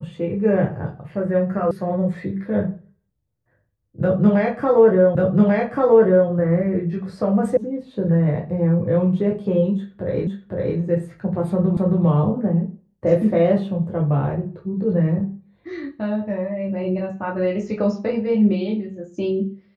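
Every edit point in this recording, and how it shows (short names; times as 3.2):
1.71 sound cut off
5.15 repeat of the last 1.14 s
7.57 sound cut off
10.27 repeat of the last 0.51 s
11.77 repeat of the last 0.27 s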